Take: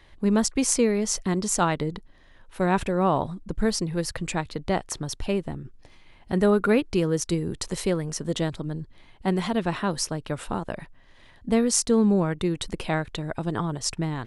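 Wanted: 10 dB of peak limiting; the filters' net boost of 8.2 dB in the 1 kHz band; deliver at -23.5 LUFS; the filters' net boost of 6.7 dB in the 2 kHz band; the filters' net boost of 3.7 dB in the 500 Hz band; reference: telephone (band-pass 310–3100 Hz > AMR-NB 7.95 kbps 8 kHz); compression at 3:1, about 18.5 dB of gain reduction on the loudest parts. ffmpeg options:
-af "equalizer=f=500:t=o:g=3.5,equalizer=f=1000:t=o:g=8,equalizer=f=2000:t=o:g=6,acompressor=threshold=0.0126:ratio=3,alimiter=level_in=1.58:limit=0.0631:level=0:latency=1,volume=0.631,highpass=310,lowpass=3100,volume=9.44" -ar 8000 -c:a libopencore_amrnb -b:a 7950

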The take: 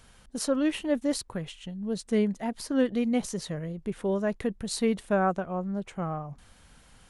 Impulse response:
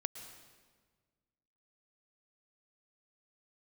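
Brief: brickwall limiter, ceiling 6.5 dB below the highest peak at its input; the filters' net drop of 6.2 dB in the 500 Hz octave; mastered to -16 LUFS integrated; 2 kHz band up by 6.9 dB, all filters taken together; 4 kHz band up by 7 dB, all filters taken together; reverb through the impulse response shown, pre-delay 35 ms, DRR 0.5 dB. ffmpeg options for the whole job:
-filter_complex "[0:a]equalizer=f=500:t=o:g=-8,equalizer=f=2000:t=o:g=8,equalizer=f=4000:t=o:g=6.5,alimiter=limit=0.0944:level=0:latency=1,asplit=2[s0][s1];[1:a]atrim=start_sample=2205,adelay=35[s2];[s1][s2]afir=irnorm=-1:irlink=0,volume=1[s3];[s0][s3]amix=inputs=2:normalize=0,volume=4.73"

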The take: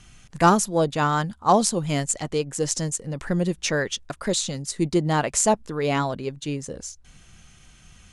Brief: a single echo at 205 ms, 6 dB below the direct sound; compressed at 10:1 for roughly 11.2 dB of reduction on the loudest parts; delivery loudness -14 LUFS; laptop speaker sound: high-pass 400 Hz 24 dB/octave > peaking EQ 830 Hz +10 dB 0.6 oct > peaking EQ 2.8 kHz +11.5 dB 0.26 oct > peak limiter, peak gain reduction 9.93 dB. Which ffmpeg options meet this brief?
-af "acompressor=threshold=0.0708:ratio=10,highpass=f=400:w=0.5412,highpass=f=400:w=1.3066,equalizer=f=830:t=o:w=0.6:g=10,equalizer=f=2800:t=o:w=0.26:g=11.5,aecho=1:1:205:0.501,volume=5.62,alimiter=limit=0.708:level=0:latency=1"

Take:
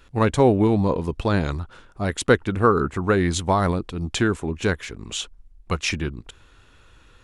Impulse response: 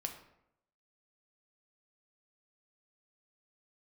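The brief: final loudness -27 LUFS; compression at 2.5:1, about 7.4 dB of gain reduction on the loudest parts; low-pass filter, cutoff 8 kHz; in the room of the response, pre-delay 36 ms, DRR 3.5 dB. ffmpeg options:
-filter_complex "[0:a]lowpass=8000,acompressor=threshold=0.0794:ratio=2.5,asplit=2[s0][s1];[1:a]atrim=start_sample=2205,adelay=36[s2];[s1][s2]afir=irnorm=-1:irlink=0,volume=0.708[s3];[s0][s3]amix=inputs=2:normalize=0,volume=0.794"

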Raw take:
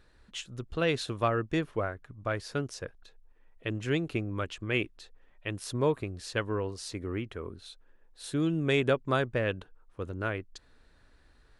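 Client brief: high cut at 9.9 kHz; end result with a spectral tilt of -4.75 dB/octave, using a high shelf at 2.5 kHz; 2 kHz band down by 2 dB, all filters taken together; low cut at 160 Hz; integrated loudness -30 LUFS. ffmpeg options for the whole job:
-af "highpass=160,lowpass=9900,equalizer=f=2000:t=o:g=-5,highshelf=f=2500:g=4.5,volume=1.5"

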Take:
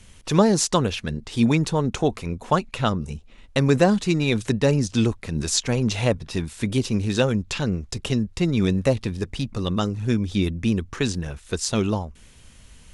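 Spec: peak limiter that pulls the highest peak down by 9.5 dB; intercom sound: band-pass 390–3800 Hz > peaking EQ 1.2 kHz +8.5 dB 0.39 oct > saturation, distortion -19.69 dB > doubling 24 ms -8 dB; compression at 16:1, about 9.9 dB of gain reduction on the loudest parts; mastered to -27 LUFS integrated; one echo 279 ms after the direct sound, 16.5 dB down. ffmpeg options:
-filter_complex "[0:a]acompressor=threshold=0.0794:ratio=16,alimiter=limit=0.126:level=0:latency=1,highpass=390,lowpass=3800,equalizer=f=1200:t=o:w=0.39:g=8.5,aecho=1:1:279:0.15,asoftclip=threshold=0.0891,asplit=2[s0][s1];[s1]adelay=24,volume=0.398[s2];[s0][s2]amix=inputs=2:normalize=0,volume=2.66"

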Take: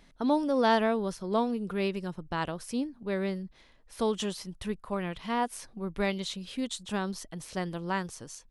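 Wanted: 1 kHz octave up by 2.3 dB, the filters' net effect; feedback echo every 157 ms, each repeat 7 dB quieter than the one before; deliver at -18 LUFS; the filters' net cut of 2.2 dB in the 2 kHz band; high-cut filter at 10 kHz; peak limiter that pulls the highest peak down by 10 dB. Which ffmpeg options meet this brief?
-af "lowpass=10000,equalizer=f=1000:t=o:g=3.5,equalizer=f=2000:t=o:g=-4,alimiter=limit=0.075:level=0:latency=1,aecho=1:1:157|314|471|628|785:0.447|0.201|0.0905|0.0407|0.0183,volume=5.62"

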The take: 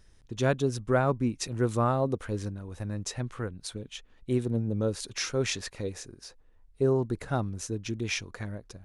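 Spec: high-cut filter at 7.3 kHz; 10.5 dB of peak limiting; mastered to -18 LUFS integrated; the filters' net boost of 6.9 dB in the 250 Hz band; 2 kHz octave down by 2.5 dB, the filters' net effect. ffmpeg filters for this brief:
-af "lowpass=7300,equalizer=f=250:t=o:g=8,equalizer=f=2000:t=o:g=-3.5,volume=5.01,alimiter=limit=0.473:level=0:latency=1"

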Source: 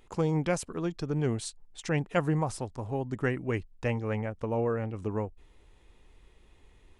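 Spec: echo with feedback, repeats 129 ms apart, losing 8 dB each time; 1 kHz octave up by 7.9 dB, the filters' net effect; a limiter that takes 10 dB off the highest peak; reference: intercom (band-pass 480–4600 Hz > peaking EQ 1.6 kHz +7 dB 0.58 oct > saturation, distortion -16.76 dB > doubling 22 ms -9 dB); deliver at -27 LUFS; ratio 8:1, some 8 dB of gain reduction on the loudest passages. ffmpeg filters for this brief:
-filter_complex "[0:a]equalizer=f=1000:t=o:g=9,acompressor=threshold=0.0447:ratio=8,alimiter=level_in=1.19:limit=0.0631:level=0:latency=1,volume=0.841,highpass=480,lowpass=4600,equalizer=f=1600:t=o:w=0.58:g=7,aecho=1:1:129|258|387|516|645:0.398|0.159|0.0637|0.0255|0.0102,asoftclip=threshold=0.0376,asplit=2[s0][s1];[s1]adelay=22,volume=0.355[s2];[s0][s2]amix=inputs=2:normalize=0,volume=4.22"

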